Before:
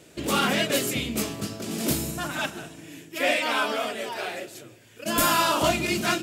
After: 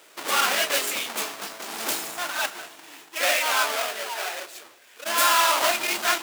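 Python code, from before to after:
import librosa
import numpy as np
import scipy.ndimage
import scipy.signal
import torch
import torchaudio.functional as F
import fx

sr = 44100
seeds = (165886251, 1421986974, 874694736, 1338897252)

y = fx.halfwave_hold(x, sr)
y = scipy.signal.sosfilt(scipy.signal.butter(2, 810.0, 'highpass', fs=sr, output='sos'), y)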